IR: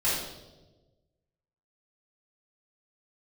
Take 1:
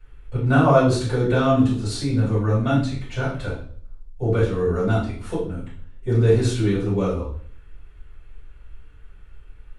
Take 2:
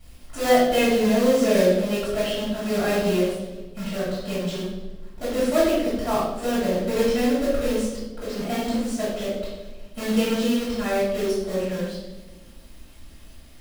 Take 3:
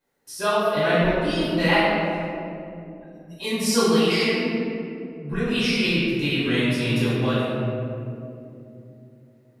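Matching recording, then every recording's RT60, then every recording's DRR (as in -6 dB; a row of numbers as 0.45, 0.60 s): 2; 0.50, 1.2, 2.8 s; -9.0, -12.5, -13.5 dB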